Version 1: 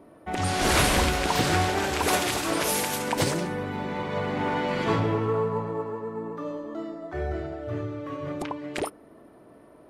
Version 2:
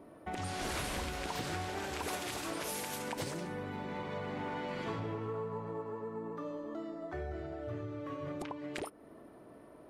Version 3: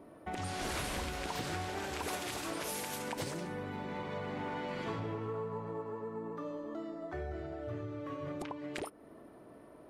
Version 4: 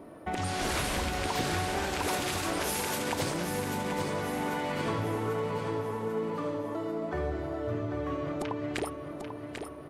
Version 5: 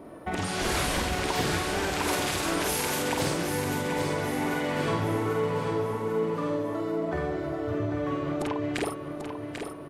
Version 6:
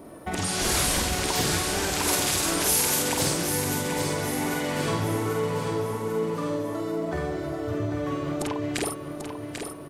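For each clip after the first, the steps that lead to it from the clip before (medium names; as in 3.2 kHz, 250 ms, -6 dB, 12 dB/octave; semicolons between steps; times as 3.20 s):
compression 3:1, threshold -36 dBFS, peak gain reduction 14 dB; trim -3 dB
no audible change
feedback delay 792 ms, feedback 49%, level -7 dB; trim +6.5 dB
doubling 48 ms -3.5 dB; trim +2 dB
tone controls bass +2 dB, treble +10 dB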